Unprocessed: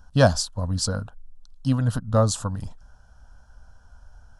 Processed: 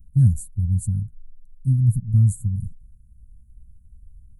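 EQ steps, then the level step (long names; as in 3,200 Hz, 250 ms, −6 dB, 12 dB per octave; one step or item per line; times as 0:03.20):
inverse Chebyshev band-stop filter 410–5,500 Hz, stop band 40 dB
dynamic equaliser 320 Hz, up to −7 dB, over −42 dBFS, Q 1.3
dynamic equaliser 110 Hz, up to +5 dB, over −34 dBFS, Q 1.4
+2.5 dB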